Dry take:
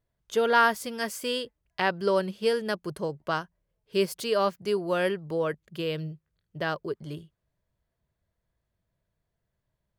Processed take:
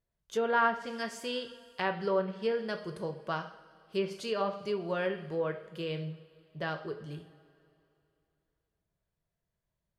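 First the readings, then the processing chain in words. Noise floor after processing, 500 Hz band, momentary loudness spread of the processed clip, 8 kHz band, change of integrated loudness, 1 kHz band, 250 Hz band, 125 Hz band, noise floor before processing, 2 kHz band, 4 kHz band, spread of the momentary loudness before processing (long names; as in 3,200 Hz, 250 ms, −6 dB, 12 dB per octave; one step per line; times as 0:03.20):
below −85 dBFS, −5.5 dB, 13 LU, can't be measured, −5.5 dB, −5.0 dB, −5.0 dB, −3.5 dB, −82 dBFS, −6.0 dB, −7.5 dB, 12 LU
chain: coupled-rooms reverb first 0.53 s, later 2.8 s, from −18 dB, DRR 5 dB
treble cut that deepens with the level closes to 2,300 Hz, closed at −19 dBFS
level −6.5 dB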